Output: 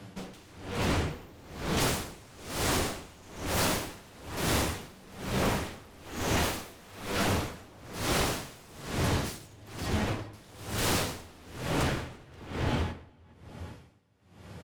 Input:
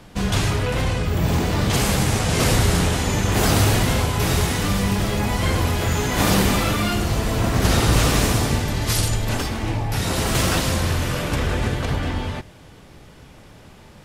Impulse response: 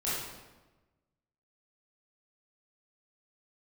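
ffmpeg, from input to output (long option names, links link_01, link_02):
-filter_complex "[0:a]highpass=frequency=83:width=0.5412,highpass=frequency=83:width=1.3066,lowshelf=frequency=210:gain=6,asplit=2[link_01][link_02];[link_02]alimiter=limit=-10dB:level=0:latency=1,volume=0.5dB[link_03];[link_01][link_03]amix=inputs=2:normalize=0,flanger=delay=9.7:depth=4.7:regen=-20:speed=0.3:shape=sinusoidal,aeval=exprs='0.141*(abs(mod(val(0)/0.141+3,4)-2)-1)':channel_layout=same,asplit=2[link_04][link_05];[link_05]adelay=387,lowpass=frequency=2500:poles=1,volume=-4dB,asplit=2[link_06][link_07];[link_07]adelay=387,lowpass=frequency=2500:poles=1,volume=0.28,asplit=2[link_08][link_09];[link_09]adelay=387,lowpass=frequency=2500:poles=1,volume=0.28,asplit=2[link_10][link_11];[link_11]adelay=387,lowpass=frequency=2500:poles=1,volume=0.28[link_12];[link_04][link_06][link_08][link_10][link_12]amix=inputs=5:normalize=0,asetrate=42336,aresample=44100,aeval=exprs='val(0)*pow(10,-26*(0.5-0.5*cos(2*PI*1.1*n/s))/20)':channel_layout=same,volume=-5.5dB"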